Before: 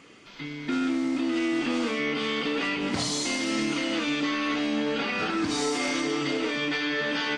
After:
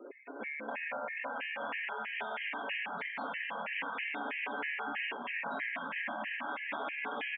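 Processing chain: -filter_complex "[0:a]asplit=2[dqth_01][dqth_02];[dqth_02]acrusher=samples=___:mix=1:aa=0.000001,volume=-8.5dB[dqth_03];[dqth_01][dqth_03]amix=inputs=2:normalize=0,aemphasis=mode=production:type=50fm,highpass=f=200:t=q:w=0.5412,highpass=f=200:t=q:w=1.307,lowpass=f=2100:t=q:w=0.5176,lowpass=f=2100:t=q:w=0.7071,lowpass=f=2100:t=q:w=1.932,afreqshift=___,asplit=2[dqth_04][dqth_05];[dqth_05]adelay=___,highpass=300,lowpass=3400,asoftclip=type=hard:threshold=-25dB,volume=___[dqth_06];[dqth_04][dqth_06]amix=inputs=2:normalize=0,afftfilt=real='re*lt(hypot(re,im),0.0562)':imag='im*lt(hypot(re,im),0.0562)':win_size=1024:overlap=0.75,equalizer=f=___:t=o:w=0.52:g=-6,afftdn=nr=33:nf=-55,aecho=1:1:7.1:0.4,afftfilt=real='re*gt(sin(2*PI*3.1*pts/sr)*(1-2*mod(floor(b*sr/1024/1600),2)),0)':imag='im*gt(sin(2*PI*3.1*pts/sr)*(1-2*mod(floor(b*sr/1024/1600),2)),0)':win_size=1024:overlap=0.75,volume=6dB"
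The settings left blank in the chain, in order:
22, 71, 110, -28dB, 1200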